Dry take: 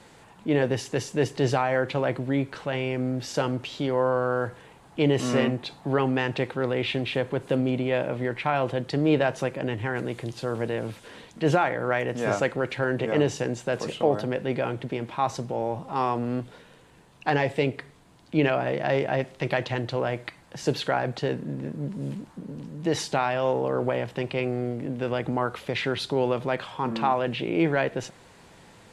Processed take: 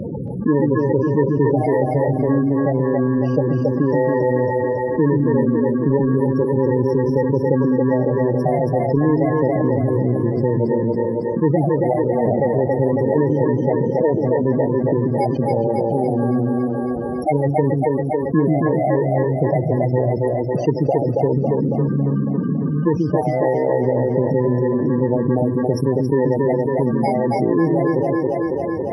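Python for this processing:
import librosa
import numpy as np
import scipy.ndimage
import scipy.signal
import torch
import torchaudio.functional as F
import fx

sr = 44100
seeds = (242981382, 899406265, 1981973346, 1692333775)

p1 = fx.bit_reversed(x, sr, seeds[0], block=32)
p2 = fx.highpass(p1, sr, hz=66.0, slope=6)
p3 = fx.transient(p2, sr, attack_db=10, sustain_db=-4)
p4 = fx.spec_topn(p3, sr, count=16)
p5 = fx.spacing_loss(p4, sr, db_at_10k=32)
p6 = p5 + fx.echo_split(p5, sr, split_hz=310.0, low_ms=134, high_ms=276, feedback_pct=52, wet_db=-4, dry=0)
y = fx.env_flatten(p6, sr, amount_pct=70)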